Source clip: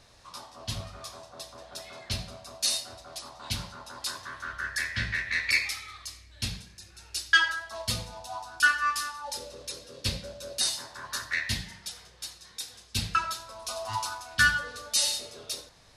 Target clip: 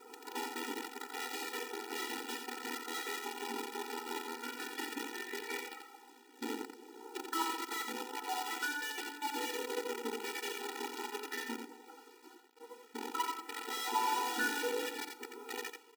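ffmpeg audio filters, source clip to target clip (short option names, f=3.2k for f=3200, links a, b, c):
-filter_complex "[0:a]lowpass=f=610:t=q:w=5.5,bandreject=f=50:t=h:w=6,bandreject=f=100:t=h:w=6,asplit=2[a][b];[b]alimiter=level_in=4.5dB:limit=-24dB:level=0:latency=1:release=219,volume=-4.5dB,volume=3dB[c];[a][c]amix=inputs=2:normalize=0,acompressor=threshold=-33dB:ratio=2.5,aphaser=in_gain=1:out_gain=1:delay=4.9:decay=0.54:speed=0.14:type=sinusoidal,agate=range=-33dB:threshold=-40dB:ratio=3:detection=peak,acrusher=bits=6:dc=4:mix=0:aa=0.000001,aecho=1:1:87:0.531,afftfilt=real='re*eq(mod(floor(b*sr/1024/250),2),1)':imag='im*eq(mod(floor(b*sr/1024/250),2),1)':win_size=1024:overlap=0.75"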